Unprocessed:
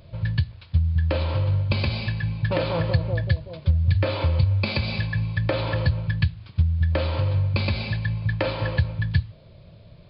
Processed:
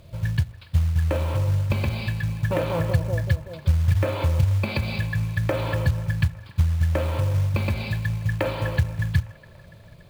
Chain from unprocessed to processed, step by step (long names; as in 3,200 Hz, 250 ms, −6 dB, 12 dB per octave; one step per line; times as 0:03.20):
treble cut that deepens with the level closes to 2,300 Hz, closed at −19.5 dBFS
log-companded quantiser 6 bits
delay with a band-pass on its return 286 ms, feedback 68%, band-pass 1,300 Hz, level −20 dB